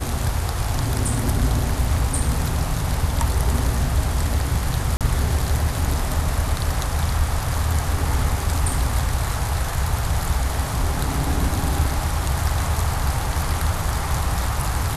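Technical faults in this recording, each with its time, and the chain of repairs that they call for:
4.97–5.01 gap 37 ms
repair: interpolate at 4.97, 37 ms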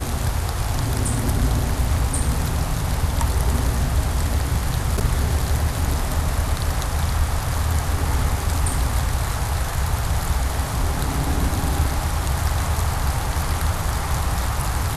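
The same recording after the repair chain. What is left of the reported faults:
none

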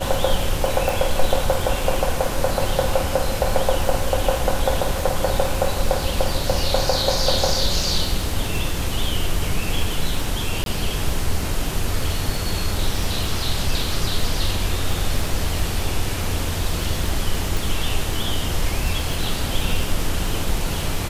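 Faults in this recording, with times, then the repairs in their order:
crackle 39/s -25 dBFS
0.89 pop
10.64–10.66 gap 22 ms
17.57 pop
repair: de-click; interpolate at 10.64, 22 ms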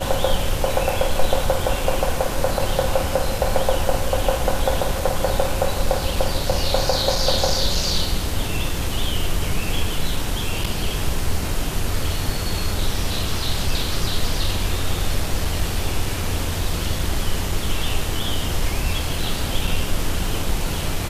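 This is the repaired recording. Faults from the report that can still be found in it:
0.89 pop

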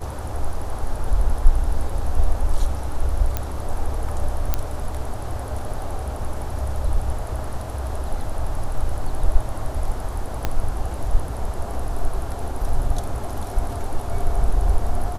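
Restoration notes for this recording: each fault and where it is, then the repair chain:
3.37 pop -9 dBFS
4.54 pop -6 dBFS
10.45 pop -8 dBFS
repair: de-click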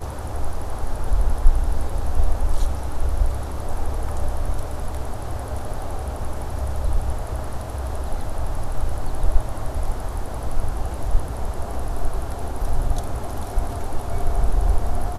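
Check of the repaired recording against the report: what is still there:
3.37 pop
10.45 pop

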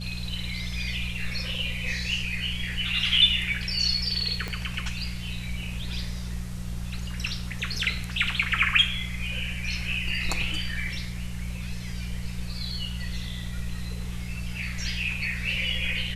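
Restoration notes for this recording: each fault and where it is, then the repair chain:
hum 60 Hz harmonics 3 -34 dBFS
4.48 pop -18 dBFS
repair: de-click; de-hum 60 Hz, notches 3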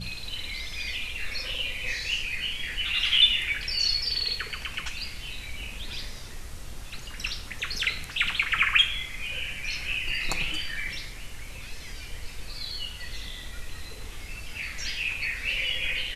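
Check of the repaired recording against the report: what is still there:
4.48 pop

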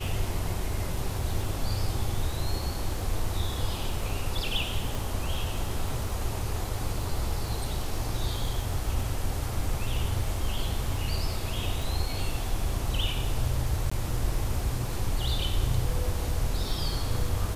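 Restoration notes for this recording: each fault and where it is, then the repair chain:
crackle 23/s -34 dBFS
4.95 pop
13.9–13.91 gap 15 ms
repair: de-click; interpolate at 13.9, 15 ms

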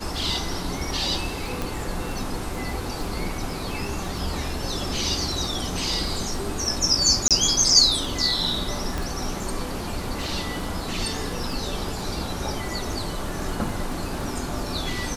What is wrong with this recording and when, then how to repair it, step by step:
crackle 22/s -31 dBFS
1.62 pop
7.28–7.31 gap 27 ms
8.98 pop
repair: de-click; interpolate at 7.28, 27 ms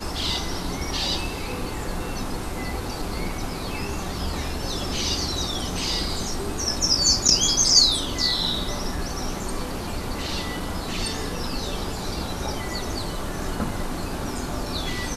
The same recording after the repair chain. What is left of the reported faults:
none

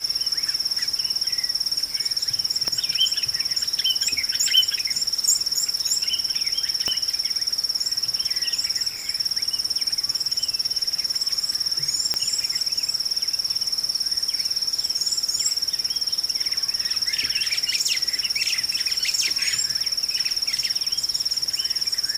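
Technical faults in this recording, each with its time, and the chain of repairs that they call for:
2.68 pop -11 dBFS
6.88 pop -10 dBFS
12.14 pop -7 dBFS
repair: de-click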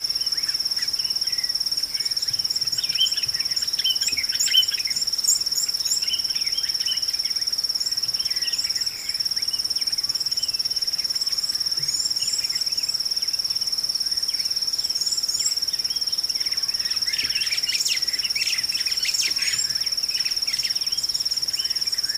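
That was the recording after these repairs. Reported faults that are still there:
6.88 pop

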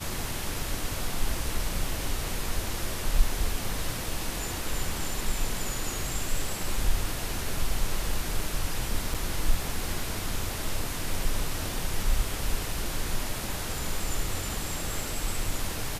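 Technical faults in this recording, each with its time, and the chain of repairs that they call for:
9.14–9.15 gap 5.6 ms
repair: interpolate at 9.14, 5.6 ms

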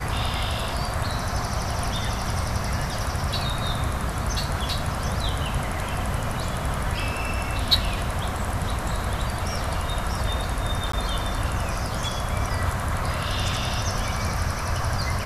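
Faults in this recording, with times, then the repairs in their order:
10.92–10.93 gap 14 ms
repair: interpolate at 10.92, 14 ms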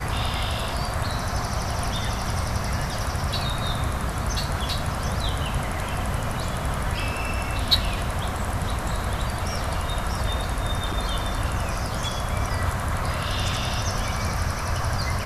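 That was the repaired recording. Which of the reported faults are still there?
none

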